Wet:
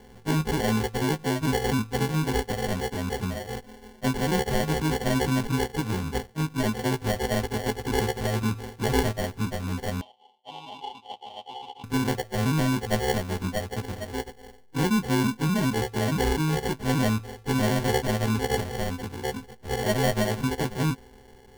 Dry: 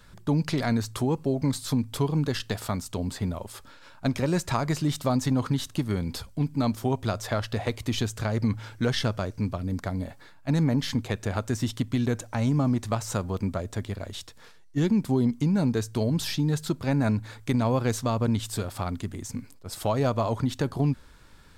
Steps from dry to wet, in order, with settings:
every partial snapped to a pitch grid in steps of 3 semitones
decimation without filtering 35×
0:10.01–0:11.84: pair of resonant band-passes 1,600 Hz, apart 1.9 octaves

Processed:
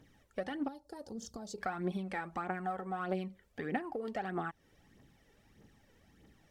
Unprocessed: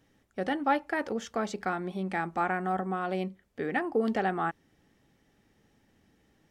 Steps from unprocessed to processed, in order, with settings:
downward compressor 12 to 1, threshold −35 dBFS, peak gain reduction 15 dB
0:00.68–0:01.58: drawn EQ curve 150 Hz 0 dB, 840 Hz −9 dB, 2,300 Hz −27 dB, 4,500 Hz +1 dB
phase shifter 1.6 Hz, delay 2.3 ms, feedback 55%

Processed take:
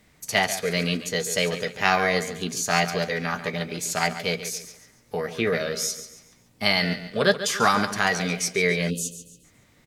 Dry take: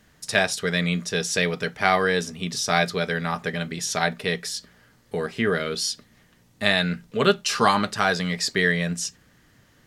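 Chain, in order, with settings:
repeating echo 140 ms, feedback 36%, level −12 dB
formants moved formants +3 semitones
gain on a spectral selection 0:08.90–0:09.44, 600–2,500 Hz −29 dB
level −1 dB

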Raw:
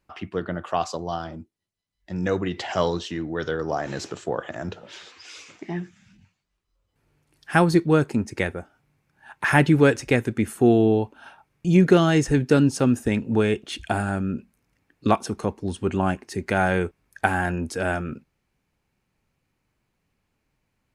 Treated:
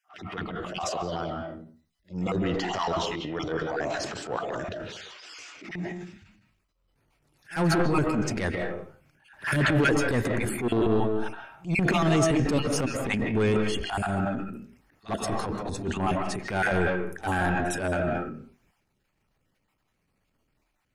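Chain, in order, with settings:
time-frequency cells dropped at random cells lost 28%
soft clipping −16.5 dBFS, distortion −11 dB
on a send at −3.5 dB: convolution reverb RT60 0.40 s, pre-delay 115 ms
on the sum: transient designer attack −11 dB, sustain +7 dB
echo ahead of the sound 56 ms −22 dB

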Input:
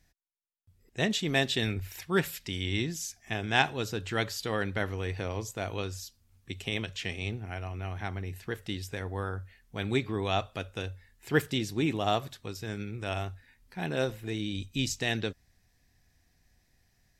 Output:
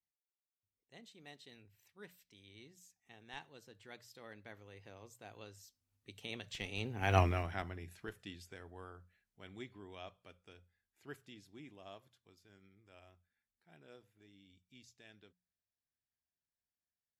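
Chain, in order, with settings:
source passing by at 0:07.19, 22 m/s, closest 1.1 metres
high-pass filter 130 Hz 6 dB per octave
mains-hum notches 60/120/180 Hz
in parallel at −7.5 dB: comparator with hysteresis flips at −48.5 dBFS
on the sum: level +14 dB

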